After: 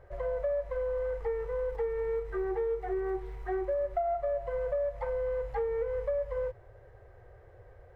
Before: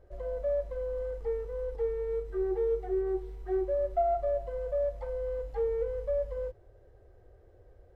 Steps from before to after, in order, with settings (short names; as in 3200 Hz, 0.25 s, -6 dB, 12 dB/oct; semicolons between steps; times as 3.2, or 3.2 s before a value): graphic EQ 125/250/500/1000/2000 Hz +10/-9/+4/+9/+11 dB; compressor 5:1, threshold -29 dBFS, peak gain reduction 11.5 dB; 1.52–3.96 crackle 65/s -57 dBFS